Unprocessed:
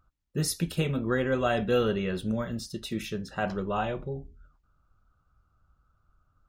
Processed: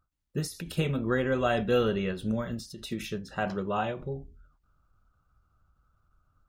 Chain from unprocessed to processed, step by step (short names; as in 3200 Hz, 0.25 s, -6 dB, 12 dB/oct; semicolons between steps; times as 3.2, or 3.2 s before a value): 3.46–4.02 HPF 90 Hz; ending taper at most 130 dB/s